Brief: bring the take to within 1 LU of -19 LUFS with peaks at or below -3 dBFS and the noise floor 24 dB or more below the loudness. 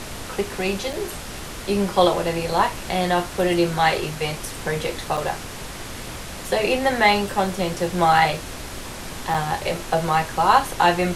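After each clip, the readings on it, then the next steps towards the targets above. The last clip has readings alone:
dropouts 3; longest dropout 5.5 ms; noise floor -34 dBFS; noise floor target -46 dBFS; loudness -22.0 LUFS; peak -2.0 dBFS; loudness target -19.0 LUFS
-> interpolate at 0.93/5.17/9.34, 5.5 ms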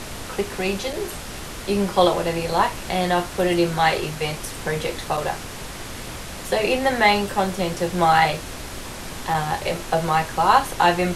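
dropouts 0; noise floor -34 dBFS; noise floor target -46 dBFS
-> noise print and reduce 12 dB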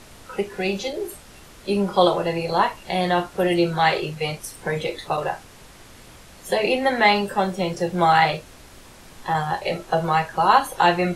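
noise floor -46 dBFS; loudness -21.5 LUFS; peak -2.5 dBFS; loudness target -19.0 LUFS
-> gain +2.5 dB; limiter -3 dBFS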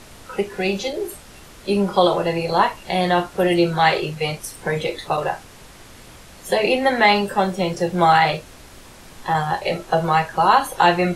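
loudness -19.5 LUFS; peak -3.0 dBFS; noise floor -44 dBFS

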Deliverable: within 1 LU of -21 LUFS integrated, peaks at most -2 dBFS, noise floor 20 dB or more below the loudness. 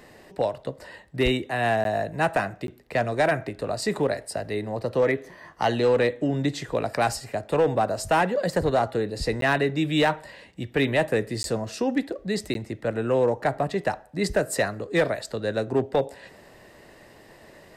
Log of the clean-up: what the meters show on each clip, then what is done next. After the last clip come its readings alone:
clipped 0.6%; flat tops at -14.0 dBFS; dropouts 5; longest dropout 12 ms; loudness -25.5 LUFS; peak -14.0 dBFS; loudness target -21.0 LUFS
-> clip repair -14 dBFS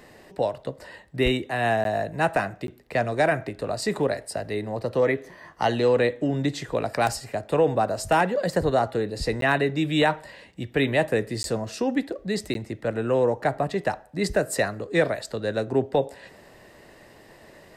clipped 0.0%; dropouts 5; longest dropout 12 ms
-> interpolate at 1.84/2.67/9.41/11.43/12.54, 12 ms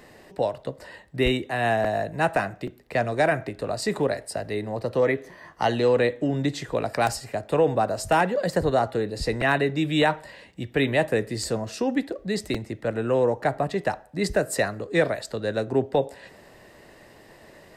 dropouts 0; loudness -25.0 LUFS; peak -7.5 dBFS; loudness target -21.0 LUFS
-> gain +4 dB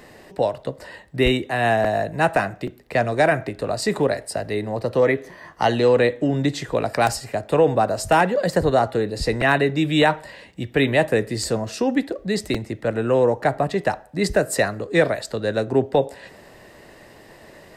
loudness -21.0 LUFS; peak -3.5 dBFS; noise floor -47 dBFS

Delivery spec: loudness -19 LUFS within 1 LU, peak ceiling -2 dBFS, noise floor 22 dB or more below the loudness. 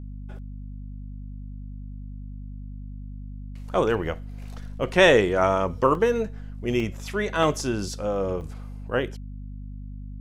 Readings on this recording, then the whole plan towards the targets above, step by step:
dropouts 5; longest dropout 1.7 ms; hum 50 Hz; harmonics up to 250 Hz; hum level -34 dBFS; loudness -24.0 LUFS; peak -6.0 dBFS; loudness target -19.0 LUFS
-> interpolate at 4.93/5.95/6.8/7.43/8.41, 1.7 ms; de-hum 50 Hz, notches 5; gain +5 dB; limiter -2 dBFS

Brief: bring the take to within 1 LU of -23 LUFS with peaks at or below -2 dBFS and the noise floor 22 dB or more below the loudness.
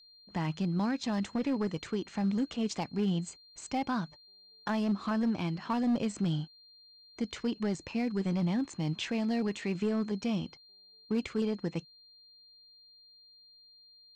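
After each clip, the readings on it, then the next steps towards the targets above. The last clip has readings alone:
clipped 1.1%; flat tops at -24.0 dBFS; steady tone 4200 Hz; tone level -56 dBFS; loudness -33.0 LUFS; peak -24.0 dBFS; loudness target -23.0 LUFS
-> clip repair -24 dBFS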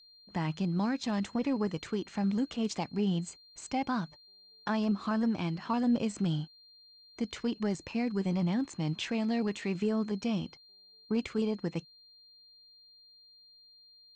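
clipped 0.0%; steady tone 4200 Hz; tone level -56 dBFS
-> notch 4200 Hz, Q 30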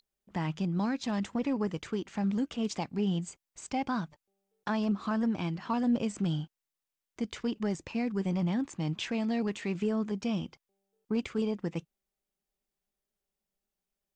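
steady tone none; loudness -32.5 LUFS; peak -19.5 dBFS; loudness target -23.0 LUFS
-> gain +9.5 dB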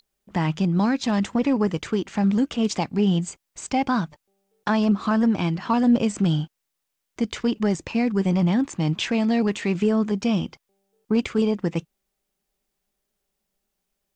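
loudness -23.0 LUFS; peak -10.0 dBFS; noise floor -80 dBFS

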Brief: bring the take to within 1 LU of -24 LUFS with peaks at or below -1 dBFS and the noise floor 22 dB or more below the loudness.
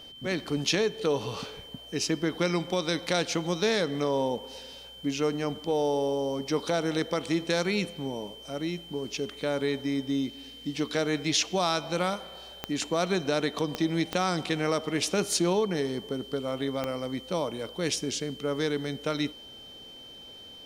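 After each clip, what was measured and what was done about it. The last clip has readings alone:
clicks 4; steady tone 3100 Hz; tone level -45 dBFS; loudness -29.5 LUFS; peak -13.0 dBFS; loudness target -24.0 LUFS
-> de-click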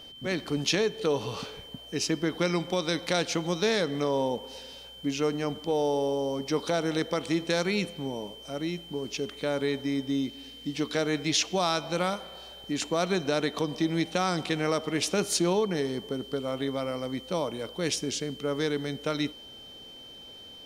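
clicks 0; steady tone 3100 Hz; tone level -45 dBFS
-> notch 3100 Hz, Q 30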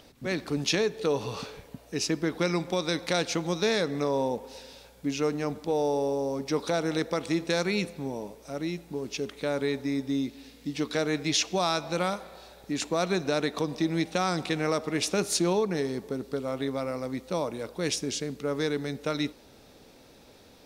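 steady tone none; loudness -29.5 LUFS; peak -13.0 dBFS; loudness target -24.0 LUFS
-> gain +5.5 dB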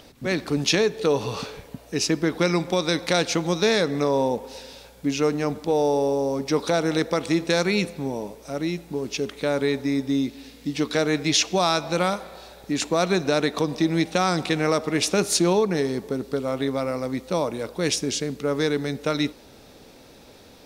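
loudness -24.0 LUFS; peak -7.5 dBFS; noise floor -49 dBFS

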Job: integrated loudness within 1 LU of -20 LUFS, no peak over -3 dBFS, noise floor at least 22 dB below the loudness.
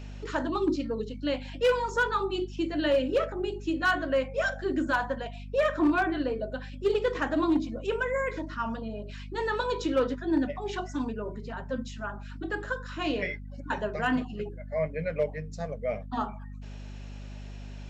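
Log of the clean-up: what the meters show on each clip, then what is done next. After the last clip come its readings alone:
clipped 0.4%; flat tops at -18.0 dBFS; hum 50 Hz; harmonics up to 250 Hz; hum level -38 dBFS; loudness -30.0 LUFS; peak -18.0 dBFS; loudness target -20.0 LUFS
-> clip repair -18 dBFS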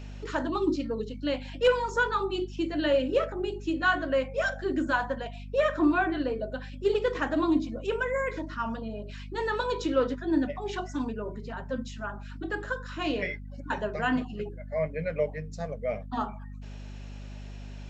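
clipped 0.0%; hum 50 Hz; harmonics up to 250 Hz; hum level -38 dBFS
-> de-hum 50 Hz, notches 5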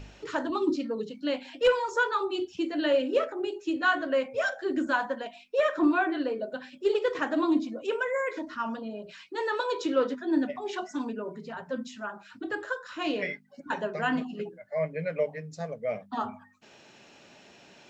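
hum none; loudness -30.0 LUFS; peak -11.0 dBFS; loudness target -20.0 LUFS
-> gain +10 dB; limiter -3 dBFS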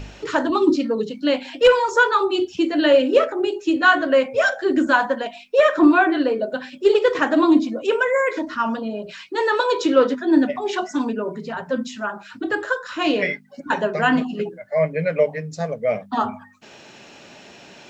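loudness -20.0 LUFS; peak -3.0 dBFS; noise floor -45 dBFS

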